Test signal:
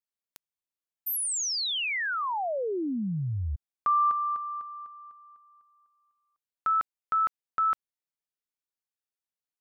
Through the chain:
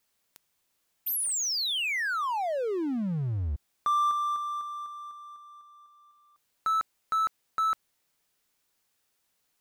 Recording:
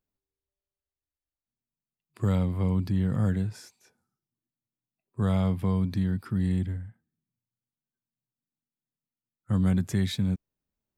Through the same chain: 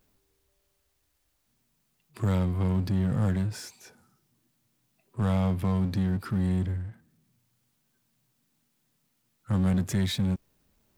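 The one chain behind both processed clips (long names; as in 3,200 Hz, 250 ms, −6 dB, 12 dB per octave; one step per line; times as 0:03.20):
power curve on the samples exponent 0.7
level −2.5 dB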